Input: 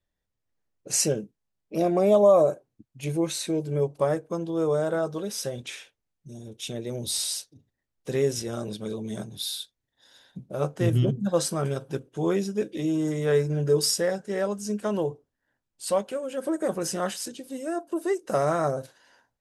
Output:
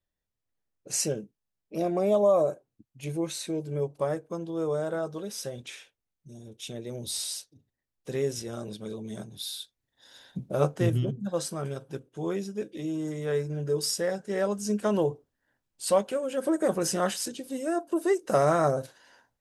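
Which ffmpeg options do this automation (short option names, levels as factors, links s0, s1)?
-af "volume=4.22,afade=t=in:st=9.54:d=0.9:silence=0.334965,afade=t=out:st=10.44:d=0.58:silence=0.281838,afade=t=in:st=13.79:d=0.95:silence=0.421697"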